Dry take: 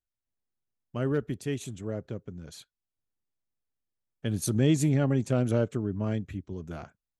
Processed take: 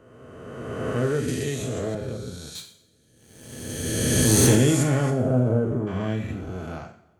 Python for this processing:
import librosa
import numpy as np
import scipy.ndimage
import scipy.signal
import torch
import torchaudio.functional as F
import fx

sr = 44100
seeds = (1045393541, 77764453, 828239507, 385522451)

y = fx.spec_swells(x, sr, rise_s=2.08)
y = fx.leveller(y, sr, passes=2, at=(2.55, 4.55))
y = fx.lowpass(y, sr, hz=1000.0, slope=12, at=(5.1, 5.87))
y = fx.rev_double_slope(y, sr, seeds[0], early_s=0.55, late_s=2.6, knee_db=-25, drr_db=2.0)
y = fx.band_squash(y, sr, depth_pct=100, at=(1.28, 1.95))